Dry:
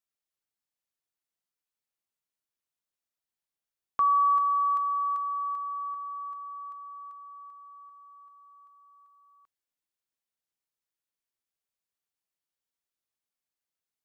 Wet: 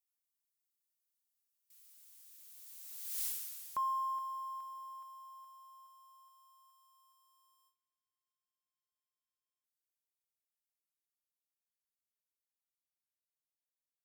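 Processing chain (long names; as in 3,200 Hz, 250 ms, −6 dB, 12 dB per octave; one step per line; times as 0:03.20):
spike at every zero crossing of −35 dBFS
source passing by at 0:03.23, 26 m/s, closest 2.2 metres
noise gate with hold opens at −59 dBFS
level +5 dB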